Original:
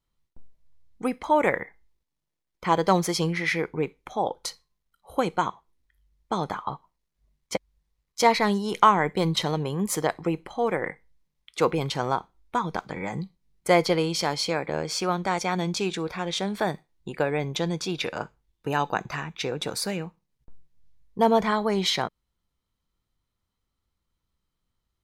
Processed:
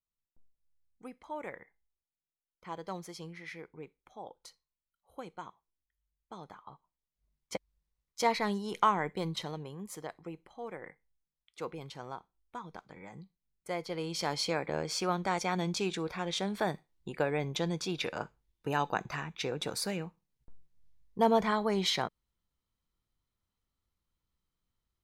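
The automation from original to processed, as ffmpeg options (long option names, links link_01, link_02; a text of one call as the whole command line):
ffmpeg -i in.wav -af "volume=2.5dB,afade=type=in:start_time=6.68:duration=0.86:silence=0.298538,afade=type=out:start_time=8.93:duration=0.92:silence=0.398107,afade=type=in:start_time=13.87:duration=0.51:silence=0.266073" out.wav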